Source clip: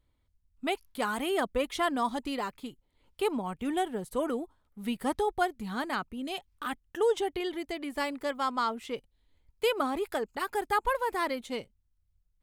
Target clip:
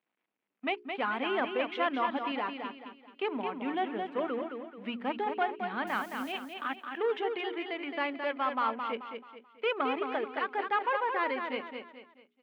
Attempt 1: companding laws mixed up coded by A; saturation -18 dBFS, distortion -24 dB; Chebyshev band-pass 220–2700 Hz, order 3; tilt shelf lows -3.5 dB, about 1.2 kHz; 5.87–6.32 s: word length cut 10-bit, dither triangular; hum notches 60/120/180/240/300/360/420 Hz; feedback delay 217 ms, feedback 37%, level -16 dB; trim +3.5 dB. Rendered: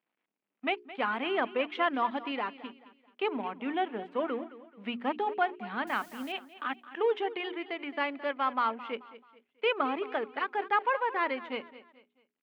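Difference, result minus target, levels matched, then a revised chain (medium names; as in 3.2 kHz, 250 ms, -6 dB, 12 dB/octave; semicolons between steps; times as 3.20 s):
echo-to-direct -10 dB; saturation: distortion -9 dB
companding laws mixed up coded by A; saturation -24.5 dBFS, distortion -15 dB; Chebyshev band-pass 220–2700 Hz, order 3; tilt shelf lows -3.5 dB, about 1.2 kHz; 5.87–6.32 s: word length cut 10-bit, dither triangular; hum notches 60/120/180/240/300/360/420 Hz; feedback delay 217 ms, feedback 37%, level -6 dB; trim +3.5 dB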